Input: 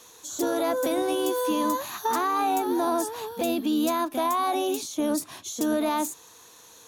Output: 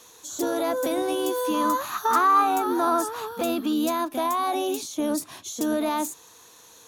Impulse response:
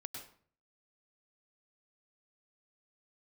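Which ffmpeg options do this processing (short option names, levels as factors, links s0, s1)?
-filter_complex "[0:a]asettb=1/sr,asplit=3[s0][s1][s2];[s0]atrim=end=1.544[s3];[s1]atrim=start=1.54:end=3.73,asetpts=PTS-STARTPTS,afade=t=in:d=0.004:c=qsin,afade=t=out:st=2.186:d=0.004:c=qsin,equalizer=f=1300:w=3.2:g=13[s4];[s2]atrim=start=3.726[s5];[s3][s4]acrossfade=d=0.004:c1=hsin:c2=qsin[s6];[s6][s5]acrossfade=d=0.004:c1=qsin:c2=hsin"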